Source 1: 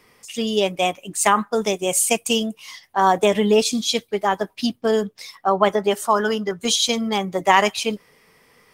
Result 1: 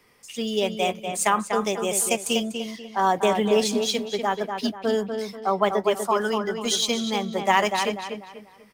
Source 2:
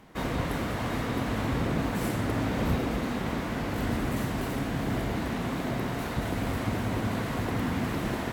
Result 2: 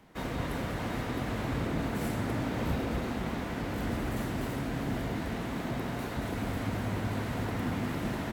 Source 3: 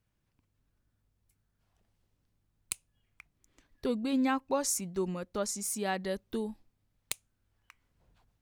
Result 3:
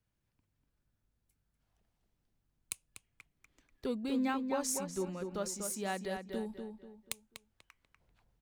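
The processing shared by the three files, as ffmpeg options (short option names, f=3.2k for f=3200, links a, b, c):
-filter_complex "[0:a]bandreject=f=1.1k:w=30,acrossover=split=290|1800[a][b][c];[c]acrusher=bits=5:mode=log:mix=0:aa=0.000001[d];[a][b][d]amix=inputs=3:normalize=0,asplit=2[e][f];[f]adelay=244,lowpass=f=3.4k:p=1,volume=-6dB,asplit=2[g][h];[h]adelay=244,lowpass=f=3.4k:p=1,volume=0.35,asplit=2[i][j];[j]adelay=244,lowpass=f=3.4k:p=1,volume=0.35,asplit=2[k][l];[l]adelay=244,lowpass=f=3.4k:p=1,volume=0.35[m];[e][g][i][k][m]amix=inputs=5:normalize=0,volume=-4.5dB"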